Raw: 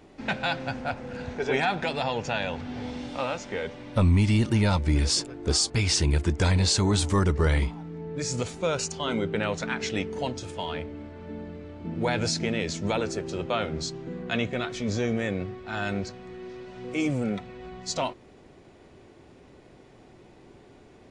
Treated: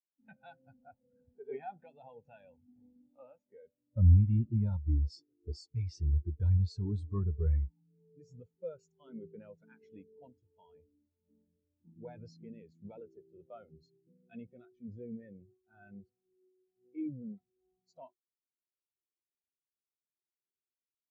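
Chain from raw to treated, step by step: spectral expander 2.5:1; gain -1.5 dB

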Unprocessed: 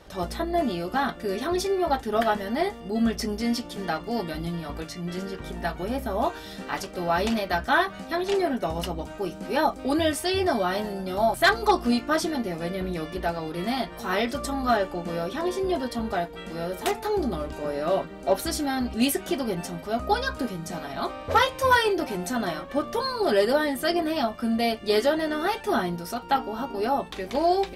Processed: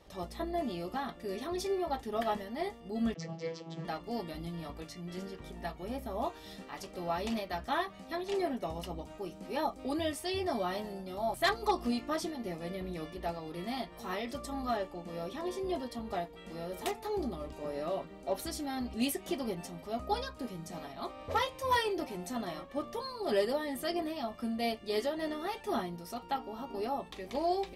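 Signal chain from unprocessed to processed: notch 1500 Hz, Q 5.6; 3.14–3.85 vocoder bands 32, saw 164 Hz; noise-modulated level, depth 60%; gain -6.5 dB

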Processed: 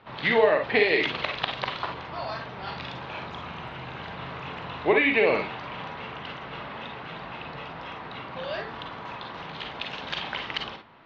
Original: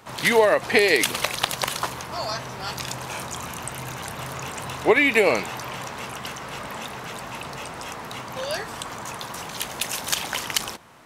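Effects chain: steep low-pass 3900 Hz 36 dB/oct; reverb RT60 0.15 s, pre-delay 39 ms, DRR 4 dB; gain -4.5 dB

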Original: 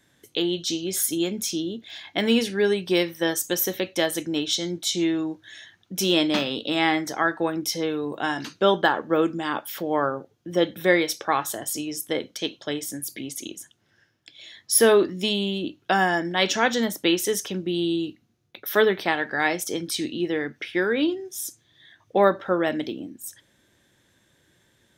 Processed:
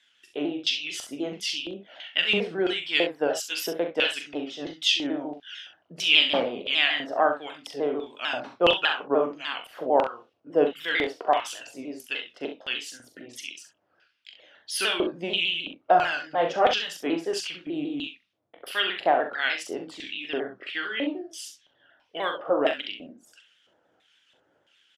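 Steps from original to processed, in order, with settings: repeated pitch sweeps -3.5 st, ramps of 0.15 s; LFO band-pass square 1.5 Hz 660–2900 Hz; early reflections 41 ms -7.5 dB, 66 ms -10 dB; gain +7.5 dB

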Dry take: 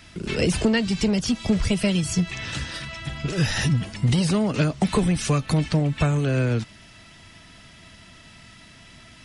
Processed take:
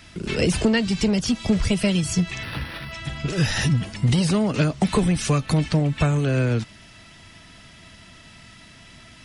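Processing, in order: 2.43–2.92 decimation joined by straight lines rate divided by 6×; gain +1 dB

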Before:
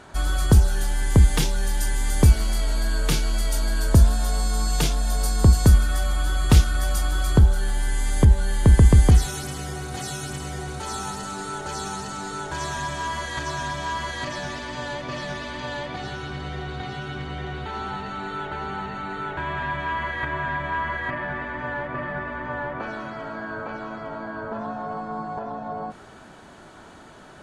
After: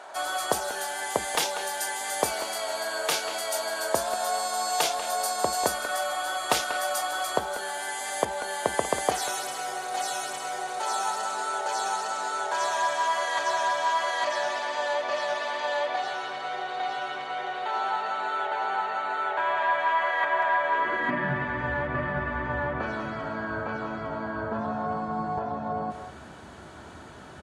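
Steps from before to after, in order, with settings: high-pass sweep 660 Hz -> 70 Hz, 20.62–21.65; speakerphone echo 0.19 s, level -9 dB

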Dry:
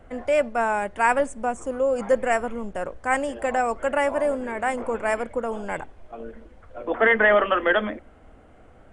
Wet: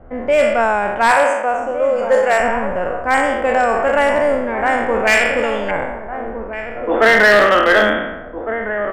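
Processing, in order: spectral trails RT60 1.11 s; 1.11–2.4 HPF 410 Hz 12 dB/oct; low-pass opened by the level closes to 1200 Hz, open at -12.5 dBFS; 5.07–5.71 resonant high shelf 1700 Hz +13 dB, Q 1.5; outdoor echo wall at 250 m, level -9 dB; hard clip -12 dBFS, distortion -18 dB; gain +6 dB

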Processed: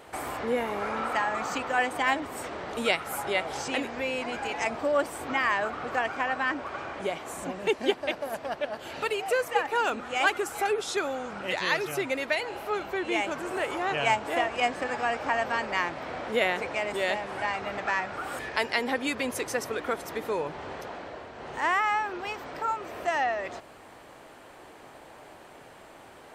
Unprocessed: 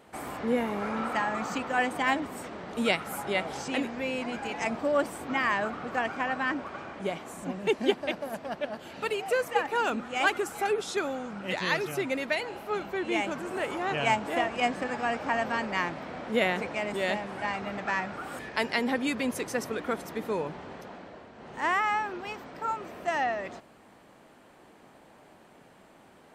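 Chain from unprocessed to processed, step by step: bell 200 Hz -10 dB 0.92 oct; in parallel at +3 dB: compressor, threshold -43 dBFS, peak gain reduction 21.5 dB

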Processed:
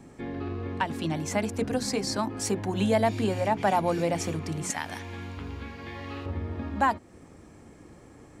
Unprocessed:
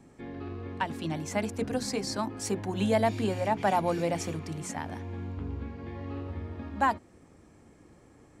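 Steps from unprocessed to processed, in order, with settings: 4.7–6.26 tilt shelf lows -8.5 dB, about 1100 Hz; in parallel at 0 dB: compressor, threshold -36 dBFS, peak gain reduction 15 dB

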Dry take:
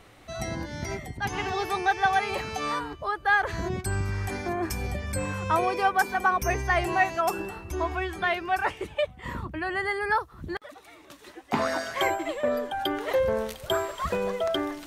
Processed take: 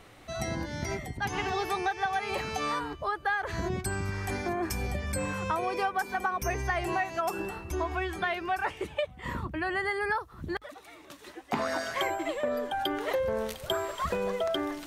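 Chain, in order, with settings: notches 50/100 Hz; compressor, threshold -26 dBFS, peak gain reduction 9 dB

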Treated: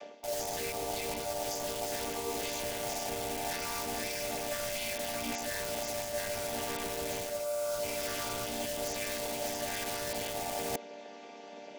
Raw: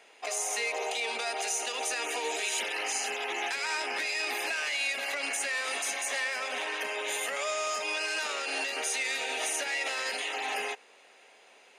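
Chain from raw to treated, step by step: chord vocoder minor triad, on G3; steep low-pass 6300 Hz 36 dB/oct; bell 620 Hz +13.5 dB 0.67 oct; in parallel at -7 dB: wrapped overs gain 27 dB; on the sum: tone controls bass +14 dB, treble +14 dB; reverse; compressor 12:1, threshold -32 dBFS, peak gain reduction 19 dB; reverse

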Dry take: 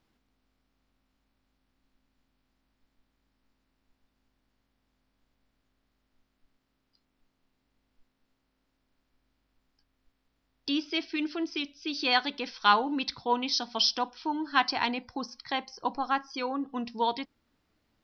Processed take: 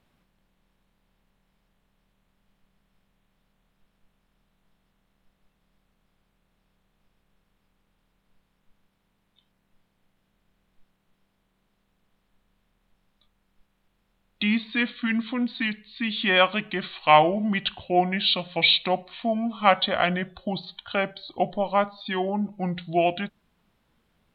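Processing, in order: speed mistake 45 rpm record played at 33 rpm; gain +5.5 dB

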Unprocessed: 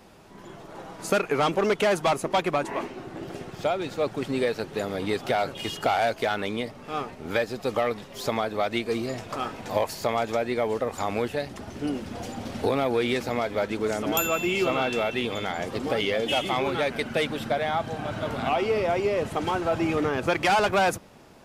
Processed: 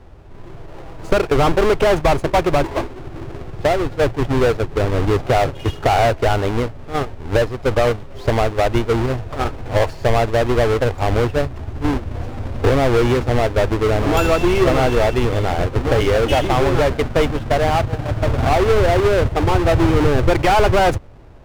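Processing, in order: half-waves squared off; gate -26 dBFS, range -7 dB; RIAA curve playback; in parallel at -1.5 dB: limiter -10 dBFS, peak gain reduction 8 dB; on the sum: bell 200 Hz -13.5 dB 0.8 oct

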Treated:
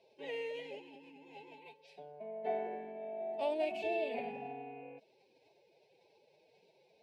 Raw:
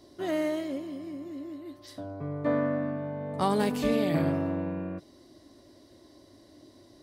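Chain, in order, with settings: formant-preserving pitch shift +7 st; double band-pass 1300 Hz, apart 1.9 oct; gain +3 dB

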